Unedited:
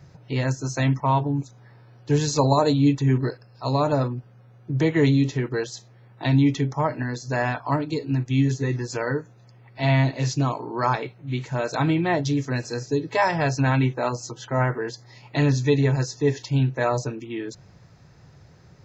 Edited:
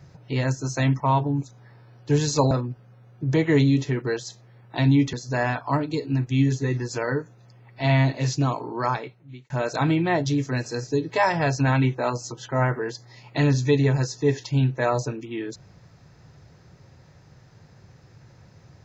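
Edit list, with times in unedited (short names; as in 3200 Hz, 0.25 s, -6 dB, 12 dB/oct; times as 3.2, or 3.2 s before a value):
2.51–3.98 cut
6.6–7.12 cut
10.69–11.49 fade out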